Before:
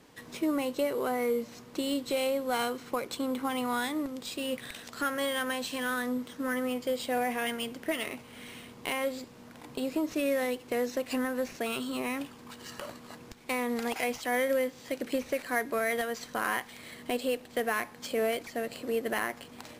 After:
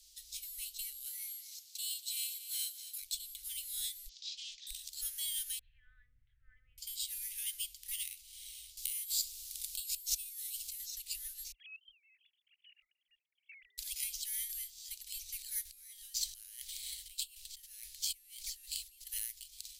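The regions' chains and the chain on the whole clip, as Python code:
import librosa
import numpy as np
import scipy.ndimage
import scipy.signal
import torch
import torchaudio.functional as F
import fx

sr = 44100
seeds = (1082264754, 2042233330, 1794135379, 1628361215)

y = fx.chain(x, sr, fx.highpass(hz=110.0, slope=24),
    fx.echo_single(ms=237, db=-13.0), at=(1.04, 3.02))
y = fx.chain(y, sr, fx.cvsd(bps=32000),
    fx.highpass(hz=1300.0, slope=6),
    fx.doppler_dist(depth_ms=0.16), at=(4.09, 4.67))
y = fx.chain(y, sr, fx.steep_lowpass(hz=1700.0, slope=36),
    fx.peak_eq(hz=120.0, db=14.0, octaves=0.87), at=(5.59, 6.78))
y = fx.chain(y, sr, fx.high_shelf(hz=4000.0, db=9.5),
    fx.over_compress(threshold_db=-37.0, ratio=-1.0), at=(8.77, 10.8))
y = fx.chain(y, sr, fx.sine_speech(),
    fx.highpass(hz=220.0, slope=6),
    fx.level_steps(step_db=17), at=(11.52, 13.78))
y = fx.chain(y, sr, fx.over_compress(threshold_db=-40.0, ratio=-1.0),
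    fx.doppler_dist(depth_ms=0.11), at=(15.65, 19.07))
y = fx.dynamic_eq(y, sr, hz=5500.0, q=1.1, threshold_db=-54.0, ratio=4.0, max_db=-5)
y = scipy.signal.sosfilt(scipy.signal.cheby2(4, 70, [170.0, 1100.0], 'bandstop', fs=sr, output='sos'), y)
y = y * 10.0 ** (7.0 / 20.0)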